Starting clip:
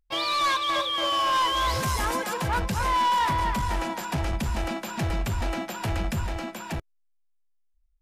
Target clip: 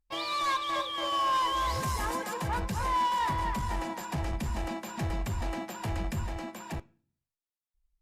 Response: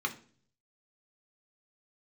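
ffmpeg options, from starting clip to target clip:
-filter_complex "[0:a]asplit=2[s0][s1];[1:a]atrim=start_sample=2205,lowshelf=f=390:g=-4.5[s2];[s1][s2]afir=irnorm=-1:irlink=0,volume=0.188[s3];[s0][s3]amix=inputs=2:normalize=0,volume=0.531" -ar 48000 -c:a libopus -b:a 64k

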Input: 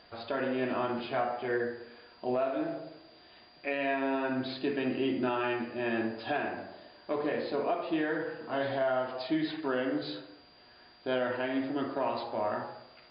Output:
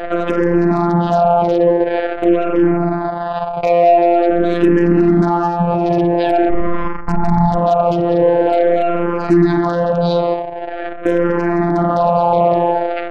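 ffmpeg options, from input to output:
-filter_complex "[0:a]asettb=1/sr,asplit=3[s0][s1][s2];[s0]atrim=end=6.494[s3];[s1]atrim=start=6.49:end=7.54,asetpts=PTS-STARTPTS,afade=t=in:d=0.004:c=qsin,afade=t=out:st=1.046:d=0.004:c=qsin,aeval=exprs='val(0)*sin(2*PI*370*n/s)':c=same[s4];[s2]atrim=start=7.536[s5];[s3][s4]acrossfade=d=0.004:c1=hsin:c2=qsin[s6];[s6][s5]acrossfade=d=0.004:c1=qsin:c2=hsin,equalizer=f=770:w=0.87:g=13.5,acrossover=split=380[s7][s8];[s8]acompressor=threshold=0.0112:ratio=3[s9];[s7][s9]amix=inputs=2:normalize=0,afftfilt=real='hypot(re,im)*cos(PI*b)':imag='0':win_size=1024:overlap=0.75,aemphasis=mode=reproduction:type=bsi,acompressor=threshold=0.01:ratio=2,aeval=exprs='0.0376*(cos(1*acos(clip(val(0)/0.0376,-1,1)))-cos(1*PI/2))+0.00133*(cos(2*acos(clip(val(0)/0.0376,-1,1)))-cos(2*PI/2))+0.000531*(cos(3*acos(clip(val(0)/0.0376,-1,1)))-cos(3*PI/2))+0.00211*(cos(4*acos(clip(val(0)/0.0376,-1,1)))-cos(4*PI/2))+0.00266*(cos(6*acos(clip(val(0)/0.0376,-1,1)))-cos(6*PI/2))':c=same,anlmdn=0.00398,alimiter=level_in=50.1:limit=0.891:release=50:level=0:latency=1,asplit=2[s10][s11];[s11]afreqshift=-0.46[s12];[s10][s12]amix=inputs=2:normalize=1"

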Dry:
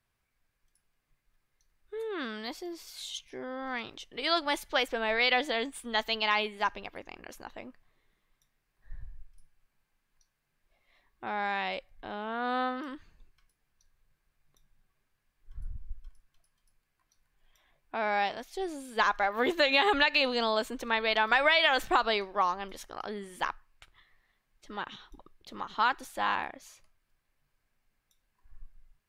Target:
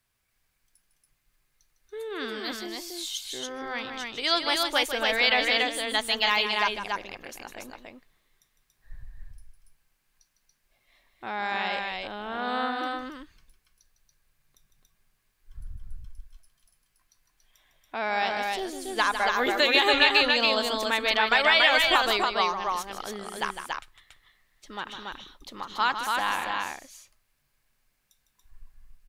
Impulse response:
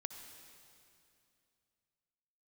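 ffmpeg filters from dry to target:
-af "highshelf=f=2800:g=8.5,aecho=1:1:154.5|282.8:0.355|0.708"

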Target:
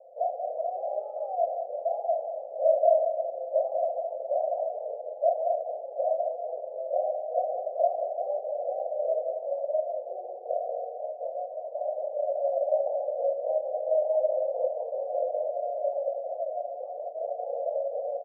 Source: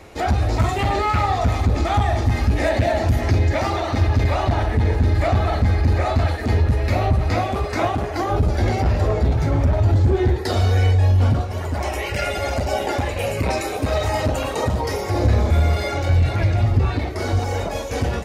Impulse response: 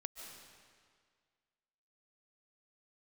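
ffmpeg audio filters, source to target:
-af "asuperpass=centerf=600:order=8:qfactor=2.9,aecho=1:1:185:0.398"

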